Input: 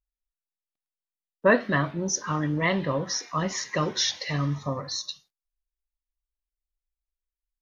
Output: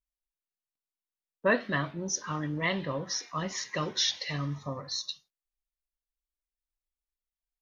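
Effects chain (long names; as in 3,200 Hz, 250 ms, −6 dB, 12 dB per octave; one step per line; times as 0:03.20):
dynamic equaliser 3,400 Hz, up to +6 dB, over −39 dBFS, Q 0.95
level −6.5 dB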